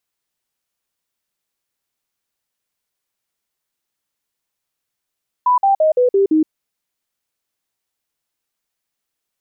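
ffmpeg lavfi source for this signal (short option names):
-f lavfi -i "aevalsrc='0.316*clip(min(mod(t,0.17),0.12-mod(t,0.17))/0.005,0,1)*sin(2*PI*992*pow(2,-floor(t/0.17)/3)*mod(t,0.17))':d=1.02:s=44100"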